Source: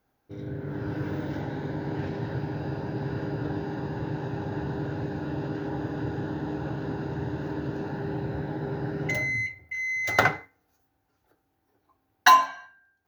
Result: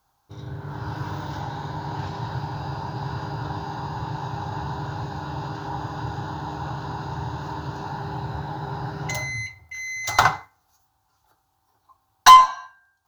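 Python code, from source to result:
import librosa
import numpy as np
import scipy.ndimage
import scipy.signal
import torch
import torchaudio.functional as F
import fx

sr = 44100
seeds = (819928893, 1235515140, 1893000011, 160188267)

y = fx.graphic_eq(x, sr, hz=(250, 500, 1000, 2000, 4000, 8000), db=(-11, -11, 12, -11, 5, 7))
y = 10.0 ** (-8.0 / 20.0) * np.tanh(y / 10.0 ** (-8.0 / 20.0))
y = fx.cheby_harmonics(y, sr, harmonics=(2,), levels_db=(-19,), full_scale_db=-8.0)
y = y * 10.0 ** (5.0 / 20.0)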